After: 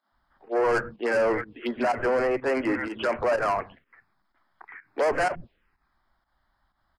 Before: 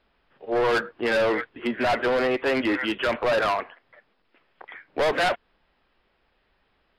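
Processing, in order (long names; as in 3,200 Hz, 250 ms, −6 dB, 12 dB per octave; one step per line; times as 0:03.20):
multiband delay without the direct sound highs, lows 120 ms, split 210 Hz
phaser swept by the level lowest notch 440 Hz, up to 3,600 Hz, full sweep at −22.5 dBFS
fake sidechain pumping 125 BPM, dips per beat 1, −12 dB, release 113 ms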